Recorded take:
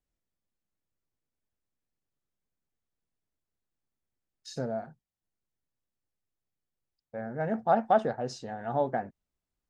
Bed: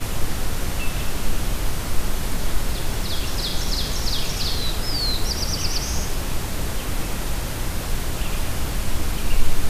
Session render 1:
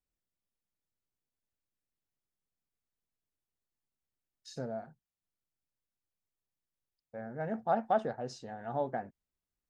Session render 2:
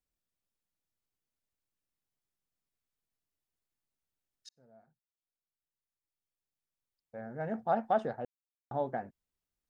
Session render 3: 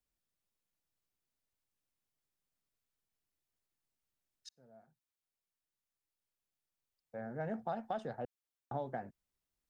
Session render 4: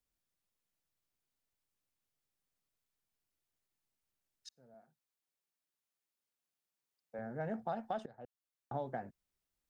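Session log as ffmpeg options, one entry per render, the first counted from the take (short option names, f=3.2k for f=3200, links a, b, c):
-af "volume=-5.5dB"
-filter_complex "[0:a]asplit=4[a][b][c][d];[a]atrim=end=4.49,asetpts=PTS-STARTPTS,afade=t=out:st=4.486:d=0.004:c=hsin[e];[b]atrim=start=4.49:end=8.25,asetpts=PTS-STARTPTS,afade=t=in:d=3.01,afade=t=out:st=3.756:d=0.004:c=hsin[f];[c]atrim=start=8.25:end=8.71,asetpts=PTS-STARTPTS,volume=0[g];[d]atrim=start=8.71,asetpts=PTS-STARTPTS,afade=t=in:d=0.004:c=hsin[h];[e][f][g][h]concat=n=4:v=0:a=1"
-filter_complex "[0:a]acrossover=split=140|3000[a][b][c];[b]acompressor=threshold=-36dB:ratio=6[d];[a][d][c]amix=inputs=3:normalize=0"
-filter_complex "[0:a]asettb=1/sr,asplit=3[a][b][c];[a]atrim=end=4.744[d];[b]atrim=start=4.74:end=7.19,asetpts=PTS-STARTPTS,afade=t=in:d=0.004:c=qsin,afade=t=out:st=2.446:d=0.004:c=qsin,highpass=160[e];[c]atrim=start=7.186[f];[d][e]acrossfade=d=0.004:c1=hsin:c2=qsin[g];[g][f]acrossfade=d=0.004:c1=qsin:c2=hsin,asplit=2[h][i];[h]atrim=end=8.06,asetpts=PTS-STARTPTS,afade=t=out:st=8.056:d=0.004:c=hsin:silence=0.11885[j];[i]atrim=start=8.06,asetpts=PTS-STARTPTS,afade=t=in:d=0.72:silence=0.11885[k];[j][k]concat=n=2:v=0:a=1"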